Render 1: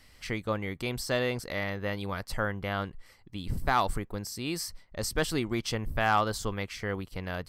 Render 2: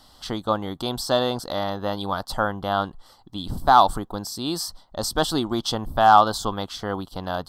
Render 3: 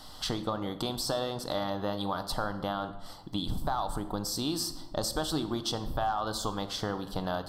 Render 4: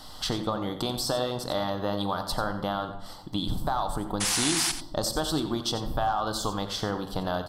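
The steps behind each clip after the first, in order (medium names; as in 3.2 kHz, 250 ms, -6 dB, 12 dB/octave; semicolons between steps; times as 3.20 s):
FFT filter 110 Hz 0 dB, 290 Hz +7 dB, 460 Hz +2 dB, 780 Hz +14 dB, 1.4 kHz +7 dB, 2.3 kHz -15 dB, 3.4 kHz +11 dB, 6 kHz +4 dB; trim +1 dB
peak limiter -12 dBFS, peak gain reduction 11 dB; compression 5:1, threshold -34 dBFS, peak gain reduction 14.5 dB; simulated room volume 570 m³, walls mixed, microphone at 0.51 m; trim +4 dB
painted sound noise, 4.20–4.72 s, 680–11000 Hz -31 dBFS; delay 89 ms -12 dB; trim +3 dB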